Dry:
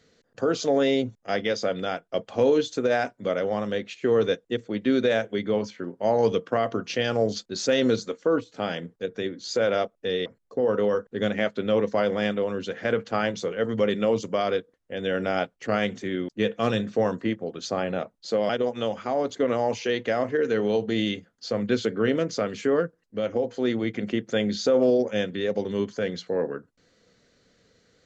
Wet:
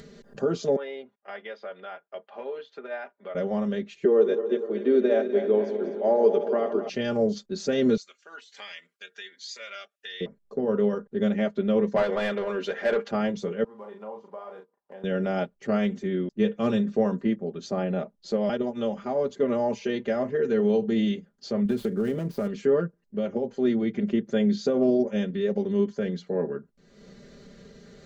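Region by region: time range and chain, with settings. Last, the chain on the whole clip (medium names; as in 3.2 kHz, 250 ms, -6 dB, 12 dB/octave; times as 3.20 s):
0.76–3.35 s: high-pass 930 Hz + distance through air 400 m
4.05–6.89 s: backward echo that repeats 123 ms, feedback 76%, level -10 dB + high-pass 330 Hz 24 dB/octave + tilt EQ -3 dB/octave
7.97–10.21 s: resonant high-pass 2 kHz, resonance Q 1.5 + Shepard-style phaser rising 1.2 Hz
11.96–13.11 s: tone controls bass -14 dB, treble +1 dB + overdrive pedal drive 18 dB, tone 2.8 kHz, clips at -12 dBFS
13.64–15.04 s: block-companded coder 5-bit + band-pass filter 910 Hz, Q 5.4 + doubling 37 ms -5 dB
21.65–22.48 s: dead-time distortion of 0.072 ms + bass shelf 170 Hz +6.5 dB + compression 5:1, threshold -22 dBFS
whole clip: tilt shelf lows +5.5 dB, about 720 Hz; comb 5 ms, depth 86%; upward compressor, threshold -30 dBFS; trim -5 dB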